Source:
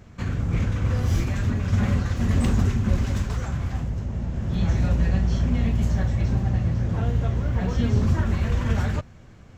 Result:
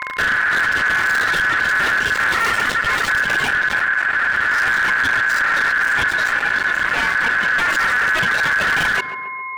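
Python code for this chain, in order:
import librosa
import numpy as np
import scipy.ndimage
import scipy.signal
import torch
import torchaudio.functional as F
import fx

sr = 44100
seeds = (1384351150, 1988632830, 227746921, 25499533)

y = scipy.signal.medfilt(x, 5)
y = fx.highpass(y, sr, hz=160.0, slope=12, at=(2.32, 3.09))
y = fx.dereverb_blind(y, sr, rt60_s=1.5)
y = fx.low_shelf(y, sr, hz=300.0, db=-8.5, at=(6.09, 7.18))
y = fx.fuzz(y, sr, gain_db=36.0, gate_db=-42.0)
y = y + 10.0 ** (-34.0 / 20.0) * np.sin(2.0 * np.pi * 560.0 * np.arange(len(y)) / sr)
y = y * np.sin(2.0 * np.pi * 1600.0 * np.arange(len(y)) / sr)
y = fx.echo_tape(y, sr, ms=135, feedback_pct=60, wet_db=-17, lp_hz=1400.0, drive_db=13.0, wow_cents=26)
y = fx.env_flatten(y, sr, amount_pct=50)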